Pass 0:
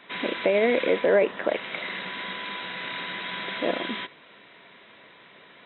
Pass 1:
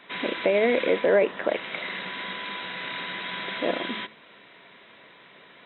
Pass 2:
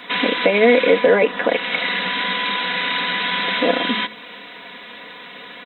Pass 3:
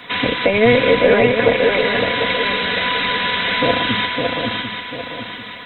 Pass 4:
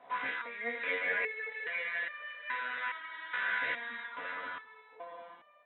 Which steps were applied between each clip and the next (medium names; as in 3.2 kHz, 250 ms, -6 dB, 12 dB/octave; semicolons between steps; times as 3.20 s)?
de-hum 107.6 Hz, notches 3
treble shelf 3.7 kHz +7.5 dB; comb 4.1 ms, depth 72%; in parallel at +2 dB: compression, threshold -31 dBFS, peak gain reduction 16 dB; on the sum: trim +3.5 dB
octave divider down 1 oct, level -5 dB; shuffle delay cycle 744 ms, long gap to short 3:1, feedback 38%, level -4 dB
auto-wah 650–1900 Hz, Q 3.4, up, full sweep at -13.5 dBFS; distance through air 230 m; resonator arpeggio 2.4 Hz 67–600 Hz; trim +3 dB